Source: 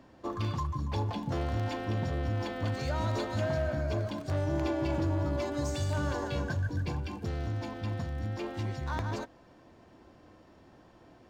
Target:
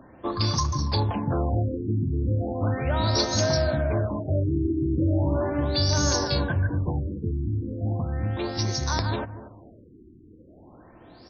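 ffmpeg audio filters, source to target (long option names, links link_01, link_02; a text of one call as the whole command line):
ffmpeg -i in.wav -filter_complex "[0:a]aexciter=amount=14.8:drive=3.6:freq=4500,asplit=2[link_01][link_02];[link_02]adelay=237,lowpass=frequency=810:poles=1,volume=-12dB,asplit=2[link_03][link_04];[link_04]adelay=237,lowpass=frequency=810:poles=1,volume=0.29,asplit=2[link_05][link_06];[link_06]adelay=237,lowpass=frequency=810:poles=1,volume=0.29[link_07];[link_01][link_03][link_05][link_07]amix=inputs=4:normalize=0,afftfilt=real='re*lt(b*sr/1024,410*pow(6700/410,0.5+0.5*sin(2*PI*0.37*pts/sr)))':imag='im*lt(b*sr/1024,410*pow(6700/410,0.5+0.5*sin(2*PI*0.37*pts/sr)))':win_size=1024:overlap=0.75,volume=7dB" out.wav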